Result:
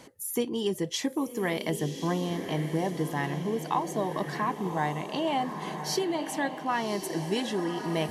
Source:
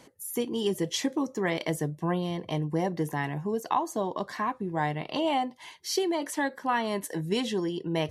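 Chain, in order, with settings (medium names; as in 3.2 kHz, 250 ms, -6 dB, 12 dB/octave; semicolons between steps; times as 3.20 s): echo that smears into a reverb 1093 ms, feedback 53%, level -8.5 dB; gain riding 0.5 s; trim -1 dB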